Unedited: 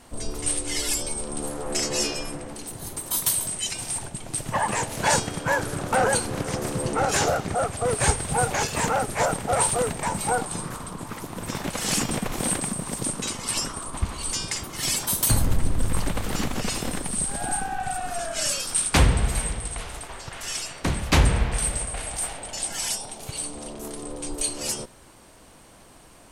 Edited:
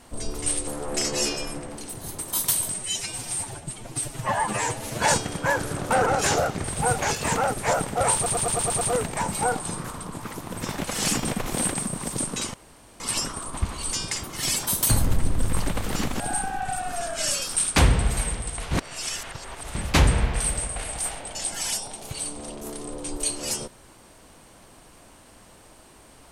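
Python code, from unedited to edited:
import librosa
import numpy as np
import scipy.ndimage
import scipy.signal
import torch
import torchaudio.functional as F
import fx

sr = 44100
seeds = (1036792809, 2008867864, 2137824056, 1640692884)

y = fx.edit(x, sr, fx.cut(start_s=0.67, length_s=0.78),
    fx.stretch_span(start_s=3.52, length_s=1.52, factor=1.5),
    fx.cut(start_s=6.08, length_s=0.88),
    fx.cut(start_s=7.54, length_s=0.62),
    fx.stutter(start_s=9.67, slice_s=0.11, count=7),
    fx.insert_room_tone(at_s=13.4, length_s=0.46),
    fx.cut(start_s=16.6, length_s=0.78),
    fx.reverse_span(start_s=19.89, length_s=1.04), tone=tone)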